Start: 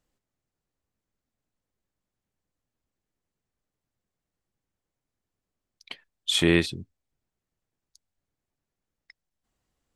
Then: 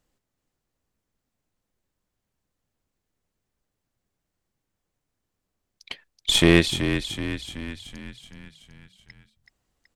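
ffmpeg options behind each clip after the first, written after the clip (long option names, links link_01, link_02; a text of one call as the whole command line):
ffmpeg -i in.wav -filter_complex "[0:a]aeval=exprs='0.501*(cos(1*acos(clip(val(0)/0.501,-1,1)))-cos(1*PI/2))+0.0398*(cos(6*acos(clip(val(0)/0.501,-1,1)))-cos(6*PI/2))':channel_layout=same,asplit=8[link_01][link_02][link_03][link_04][link_05][link_06][link_07][link_08];[link_02]adelay=377,afreqshift=-31,volume=-8.5dB[link_09];[link_03]adelay=754,afreqshift=-62,volume=-13.5dB[link_10];[link_04]adelay=1131,afreqshift=-93,volume=-18.6dB[link_11];[link_05]adelay=1508,afreqshift=-124,volume=-23.6dB[link_12];[link_06]adelay=1885,afreqshift=-155,volume=-28.6dB[link_13];[link_07]adelay=2262,afreqshift=-186,volume=-33.7dB[link_14];[link_08]adelay=2639,afreqshift=-217,volume=-38.7dB[link_15];[link_01][link_09][link_10][link_11][link_12][link_13][link_14][link_15]amix=inputs=8:normalize=0,volume=4dB" out.wav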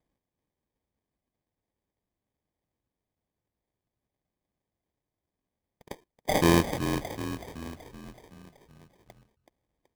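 ffmpeg -i in.wav -af "highpass=42,acrusher=samples=32:mix=1:aa=0.000001,volume=-5dB" out.wav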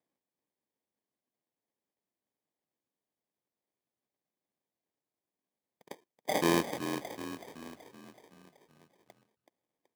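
ffmpeg -i in.wav -af "highpass=220,volume=-4.5dB" out.wav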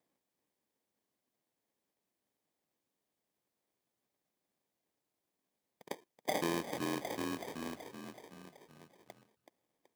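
ffmpeg -i in.wav -af "acompressor=threshold=-37dB:ratio=4,volume=4.5dB" out.wav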